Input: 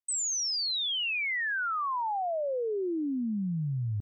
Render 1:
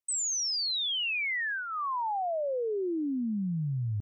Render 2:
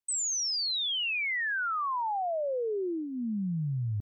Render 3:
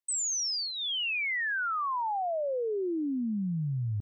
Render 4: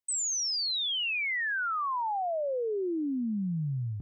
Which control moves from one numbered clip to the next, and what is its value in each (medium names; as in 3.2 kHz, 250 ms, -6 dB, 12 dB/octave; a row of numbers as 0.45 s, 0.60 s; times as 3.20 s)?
dynamic bell, frequency: 1.4 kHz, 280 Hz, 4 kHz, 100 Hz